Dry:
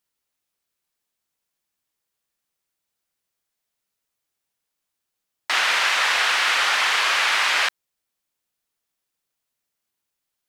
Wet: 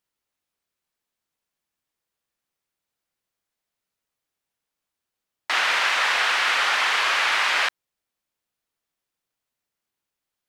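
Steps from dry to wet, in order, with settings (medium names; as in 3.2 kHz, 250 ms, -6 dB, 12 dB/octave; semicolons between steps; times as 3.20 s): treble shelf 4.1 kHz -6 dB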